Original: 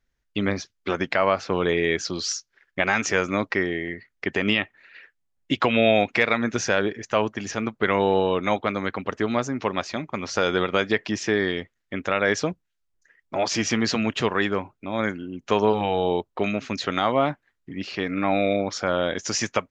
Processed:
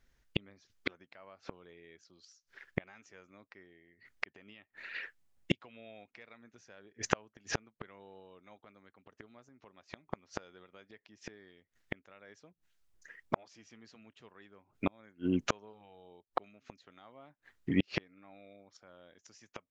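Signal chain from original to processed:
gate with flip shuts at −20 dBFS, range −39 dB
level +5 dB

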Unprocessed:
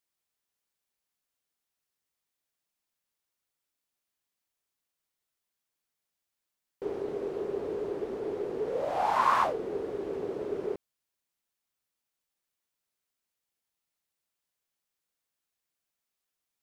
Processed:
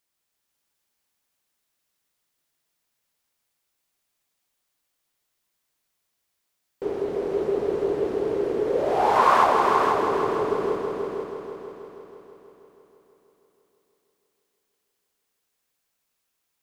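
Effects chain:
echo machine with several playback heads 161 ms, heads all three, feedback 57%, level −8 dB
level +6 dB

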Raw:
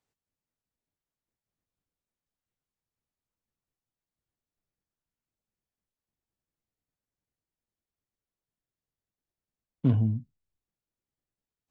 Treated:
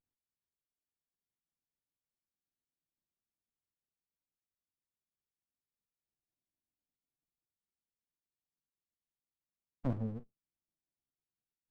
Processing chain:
auto-filter band-pass sine 0.26 Hz 320–1,800 Hz
flanger 0.22 Hz, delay 0.6 ms, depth 7.7 ms, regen +74%
windowed peak hold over 65 samples
level +8 dB

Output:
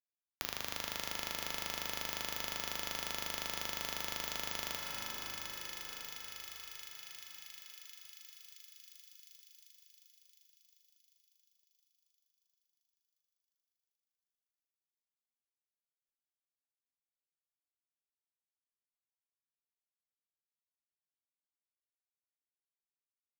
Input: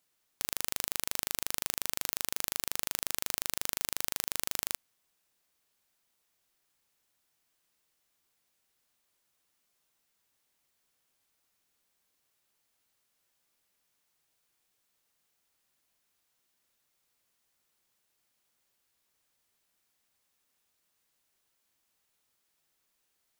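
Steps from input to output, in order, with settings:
spectral tilt +2.5 dB per octave
brickwall limiter −6.5 dBFS, peak gain reduction 10.5 dB
high-shelf EQ 5,700 Hz −9 dB
log-companded quantiser 2 bits
on a send: feedback echo with a high-pass in the loop 354 ms, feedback 74%, high-pass 1,100 Hz, level −7 dB
on the sum: dense smooth reverb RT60 3.6 s, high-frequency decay 0.55×, pre-delay 0 ms, DRR 1 dB
multiband upward and downward compressor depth 70%
level +6 dB

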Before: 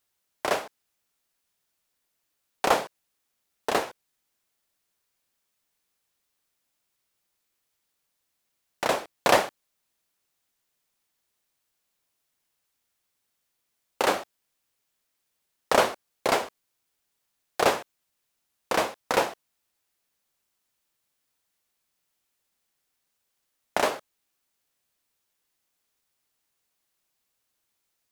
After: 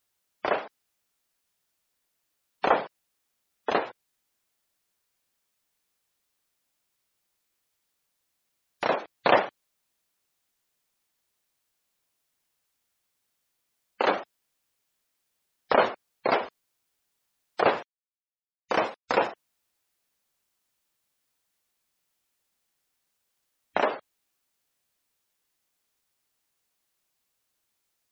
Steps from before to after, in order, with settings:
0:17.76–0:19.31: log-companded quantiser 4 bits
gate on every frequency bin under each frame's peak −20 dB strong

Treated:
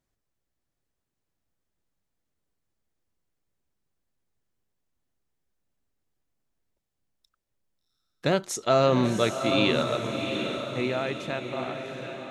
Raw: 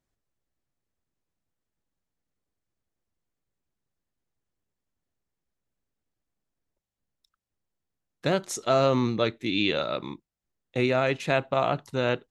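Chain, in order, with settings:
fade-out on the ending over 2.67 s
feedback delay with all-pass diffusion 734 ms, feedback 49%, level −6 dB
level +1 dB

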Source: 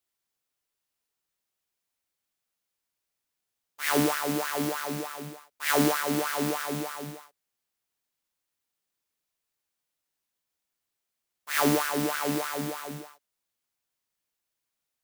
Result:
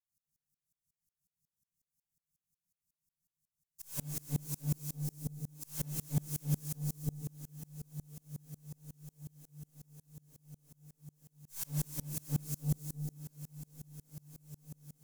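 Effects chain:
inverse Chebyshev band-stop filter 670–1,700 Hz, stop band 80 dB
parametric band 190 Hz +7.5 dB 1.6 octaves
tube saturation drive 38 dB, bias 0.25
on a send: feedback delay with all-pass diffusion 967 ms, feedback 70%, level −14 dB
on the sum: rectangular room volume 860 cubic metres, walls furnished, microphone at 5.3 metres
tremolo with a ramp in dB swelling 5.5 Hz, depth 31 dB
level +2 dB

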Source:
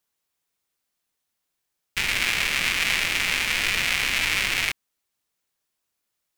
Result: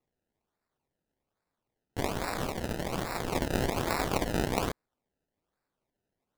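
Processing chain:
0:02.08–0:03.33: high-shelf EQ 2,900 Hz −9 dB
sample-and-hold swept by an LFO 27×, swing 100% 1.2 Hz
level −6 dB

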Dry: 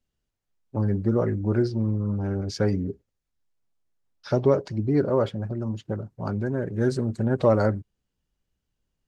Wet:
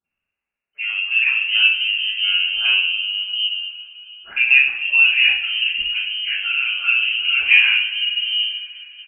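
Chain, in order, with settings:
three-band delay without the direct sound highs, mids, lows 40/720 ms, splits 180/1,700 Hz
voice inversion scrambler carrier 3,000 Hz
coupled-rooms reverb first 0.5 s, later 3.7 s, from −21 dB, DRR −10 dB
level −2.5 dB

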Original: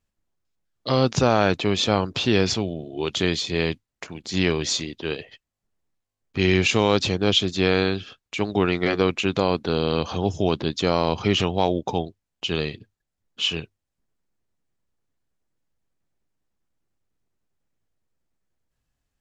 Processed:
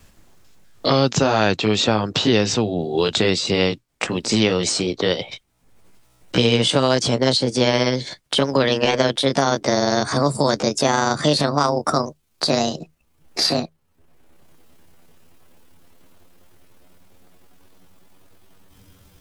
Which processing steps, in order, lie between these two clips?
pitch glide at a constant tempo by +11.5 semitones starting unshifted
in parallel at −2 dB: downward compressor, threshold −29 dBFS, peak gain reduction 14.5 dB
on the sum: pitch vibrato 1.1 Hz 9.3 cents
multiband upward and downward compressor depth 70%
level +2.5 dB

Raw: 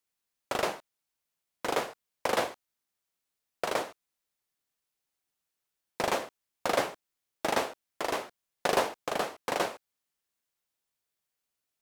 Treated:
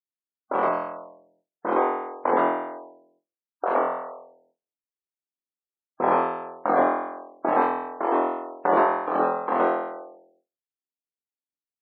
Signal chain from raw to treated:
flutter between parallel walls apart 4 metres, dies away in 0.95 s
noise gate with hold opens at −55 dBFS
dynamic equaliser 540 Hz, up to −5 dB, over −39 dBFS, Q 1.2
low-pass that shuts in the quiet parts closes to 360 Hz, open at −27 dBFS
gate on every frequency bin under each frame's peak −15 dB strong
Chebyshev band-pass filter 260–1,100 Hz, order 2
level +8.5 dB

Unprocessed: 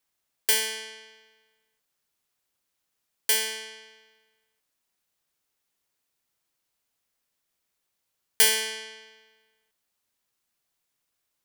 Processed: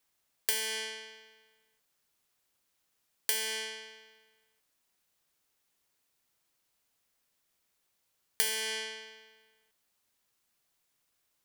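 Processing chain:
downward compressor 6 to 1, threshold −30 dBFS, peak gain reduction 14.5 dB
level +2 dB

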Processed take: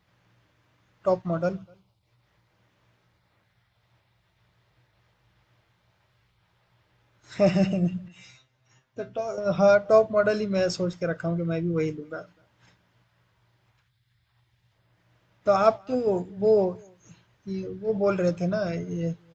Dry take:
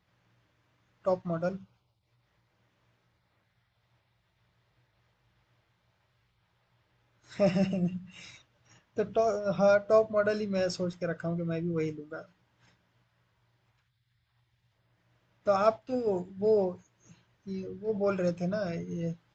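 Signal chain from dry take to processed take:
0:08.08–0:09.38: tuned comb filter 130 Hz, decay 0.16 s, harmonics all, mix 90%
slap from a distant wall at 43 metres, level −29 dB
level +5 dB

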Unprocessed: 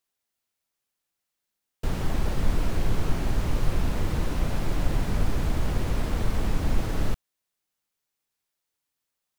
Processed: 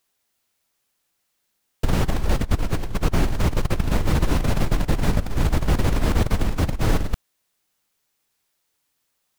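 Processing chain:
compressor whose output falls as the input rises −25 dBFS, ratio −0.5
level +6.5 dB

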